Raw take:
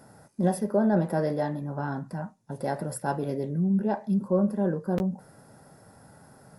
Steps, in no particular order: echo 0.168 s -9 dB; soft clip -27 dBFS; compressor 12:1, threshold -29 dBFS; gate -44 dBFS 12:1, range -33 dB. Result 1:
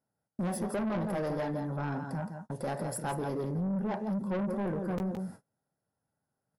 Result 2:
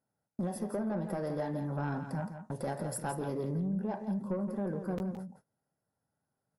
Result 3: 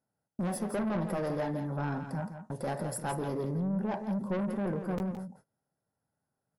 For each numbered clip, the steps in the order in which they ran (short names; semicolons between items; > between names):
echo > gate > soft clip > compressor; compressor > gate > soft clip > echo; soft clip > gate > compressor > echo